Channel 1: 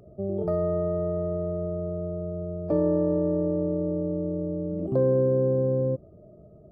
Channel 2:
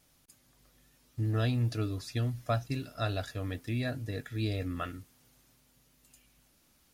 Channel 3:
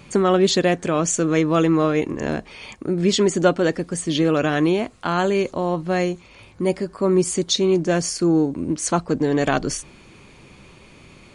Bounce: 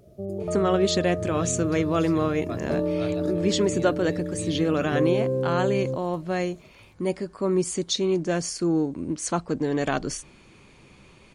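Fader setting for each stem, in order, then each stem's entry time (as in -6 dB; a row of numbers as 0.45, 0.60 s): -2.5, -5.5, -5.5 dB; 0.00, 0.00, 0.40 s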